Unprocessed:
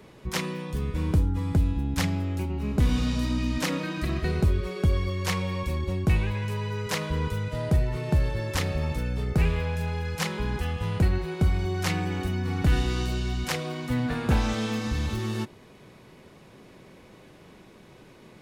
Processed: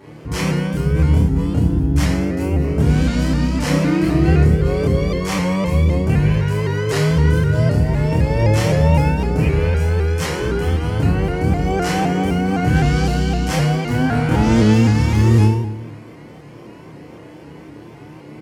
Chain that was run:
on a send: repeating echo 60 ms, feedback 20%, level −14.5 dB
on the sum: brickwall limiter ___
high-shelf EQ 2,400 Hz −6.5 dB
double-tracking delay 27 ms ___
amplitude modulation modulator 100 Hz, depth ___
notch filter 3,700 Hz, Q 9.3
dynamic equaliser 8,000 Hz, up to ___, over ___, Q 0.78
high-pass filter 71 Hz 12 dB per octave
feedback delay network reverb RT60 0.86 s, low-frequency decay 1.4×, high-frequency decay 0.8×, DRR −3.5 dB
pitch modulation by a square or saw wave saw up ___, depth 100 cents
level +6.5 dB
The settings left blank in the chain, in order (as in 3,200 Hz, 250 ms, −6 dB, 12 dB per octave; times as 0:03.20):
−18.5 dBFS, −2 dB, 35%, +5 dB, −59 dBFS, 3.9 Hz